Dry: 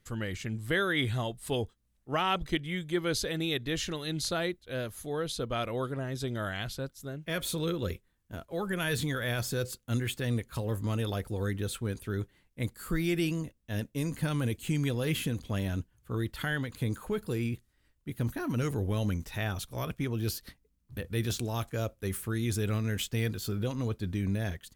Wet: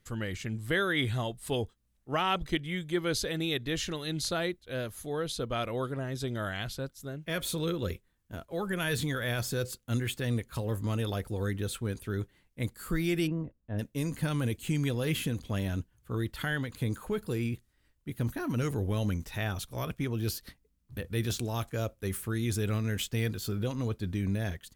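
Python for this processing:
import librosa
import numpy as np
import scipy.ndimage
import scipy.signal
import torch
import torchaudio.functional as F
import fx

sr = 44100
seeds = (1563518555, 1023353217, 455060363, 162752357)

y = fx.lowpass(x, sr, hz=1100.0, slope=12, at=(13.26, 13.78), fade=0.02)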